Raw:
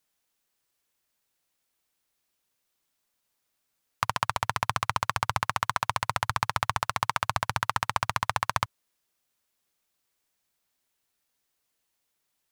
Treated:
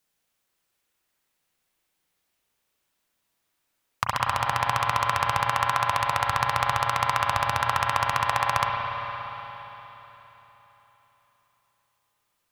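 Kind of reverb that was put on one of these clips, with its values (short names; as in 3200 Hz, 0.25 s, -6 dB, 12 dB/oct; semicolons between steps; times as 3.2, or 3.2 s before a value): spring tank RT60 3.9 s, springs 35/58 ms, chirp 70 ms, DRR -1.5 dB; gain +1 dB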